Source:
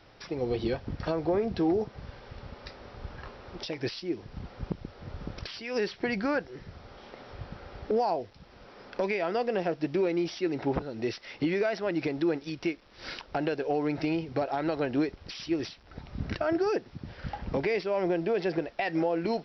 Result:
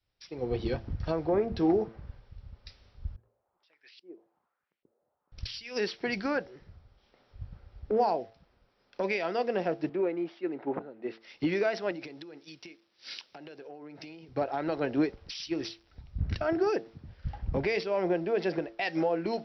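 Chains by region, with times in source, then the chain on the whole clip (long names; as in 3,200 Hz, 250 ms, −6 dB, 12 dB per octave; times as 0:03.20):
0:03.16–0:05.32: low-shelf EQ 120 Hz −5 dB + auto-filter band-pass saw up 1.2 Hz 360–2,600 Hz
0:09.89–0:11.21: high-pass filter 220 Hz + high-frequency loss of the air 310 metres
0:11.91–0:14.28: high-pass filter 130 Hz + downward compressor 10 to 1, threshold −32 dBFS
whole clip: hum removal 112.5 Hz, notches 7; multiband upward and downward expander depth 100%; level −1.5 dB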